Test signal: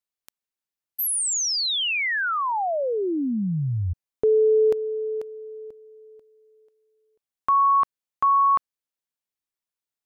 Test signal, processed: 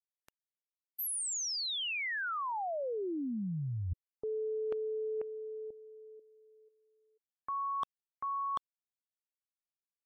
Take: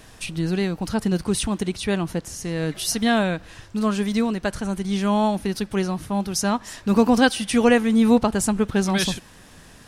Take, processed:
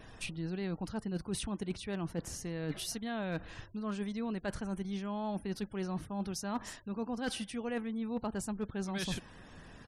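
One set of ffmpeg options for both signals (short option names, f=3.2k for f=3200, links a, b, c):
-af "aresample=32000,aresample=44100,highshelf=f=3.4k:g=-4.5,areverse,acompressor=threshold=-30dB:ratio=16:attack=43:release=212:knee=1:detection=rms,areverse,afftfilt=real='re*gte(hypot(re,im),0.00224)':imag='im*gte(hypot(re,im),0.00224)':win_size=1024:overlap=0.75,asoftclip=type=hard:threshold=-22dB,volume=-4.5dB"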